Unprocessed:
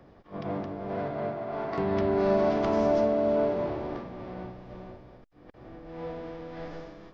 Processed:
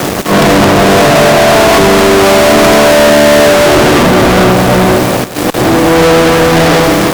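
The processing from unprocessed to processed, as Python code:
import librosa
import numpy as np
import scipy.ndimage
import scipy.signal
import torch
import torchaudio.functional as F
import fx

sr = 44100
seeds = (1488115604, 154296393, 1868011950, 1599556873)

p1 = fx.law_mismatch(x, sr, coded='A')
p2 = fx.dmg_noise_colour(p1, sr, seeds[0], colour='pink', level_db=-69.0)
p3 = scipy.signal.sosfilt(scipy.signal.butter(2, 130.0, 'highpass', fs=sr, output='sos'), p2)
p4 = 10.0 ** (-30.5 / 20.0) * np.tanh(p3 / 10.0 ** (-30.5 / 20.0))
p5 = fx.over_compress(p4, sr, threshold_db=-37.0, ratio=-1.0)
p6 = p4 + (p5 * 10.0 ** (0.0 / 20.0))
p7 = fx.fuzz(p6, sr, gain_db=54.0, gate_db=-58.0)
p8 = p7 + fx.echo_single(p7, sr, ms=177, db=-14.0, dry=0)
y = p8 * 10.0 ** (8.0 / 20.0)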